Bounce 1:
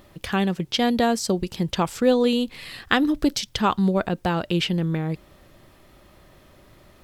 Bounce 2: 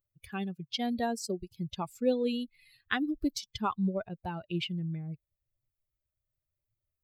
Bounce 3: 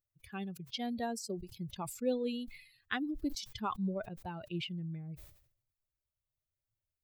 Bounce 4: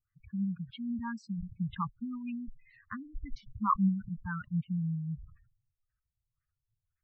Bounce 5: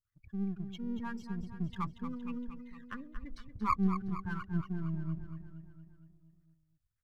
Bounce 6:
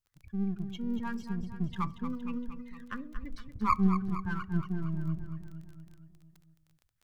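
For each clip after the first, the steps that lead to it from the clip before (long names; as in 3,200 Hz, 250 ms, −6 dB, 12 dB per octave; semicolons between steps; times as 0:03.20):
spectral dynamics exaggerated over time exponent 2; level −7.5 dB
level that may fall only so fast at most 90 dB per second; level −5.5 dB
auto-filter low-pass sine 1.9 Hz 440–1,800 Hz; elliptic band-stop filter 210–1,100 Hz, stop band 40 dB; gate on every frequency bin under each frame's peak −20 dB strong; level +8 dB
gain on one half-wave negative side −7 dB; on a send: repeating echo 232 ms, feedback 59%, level −10 dB
on a send at −18 dB: convolution reverb RT60 0.50 s, pre-delay 4 ms; on the sum: surface crackle 18 per second −48 dBFS; level +3.5 dB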